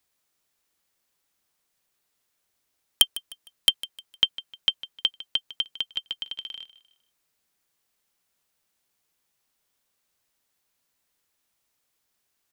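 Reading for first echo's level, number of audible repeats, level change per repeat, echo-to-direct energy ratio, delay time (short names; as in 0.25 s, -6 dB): -17.0 dB, 2, -9.0 dB, -16.5 dB, 0.153 s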